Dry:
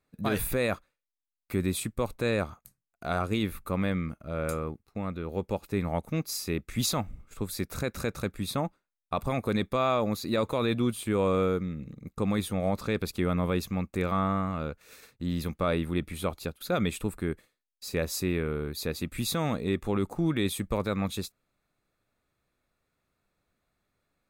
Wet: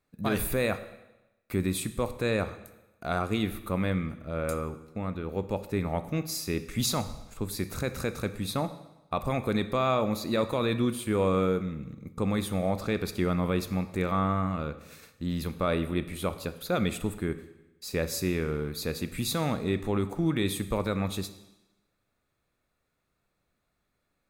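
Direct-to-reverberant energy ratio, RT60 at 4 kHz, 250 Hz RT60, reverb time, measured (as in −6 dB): 11.0 dB, 0.95 s, 1.0 s, 1.0 s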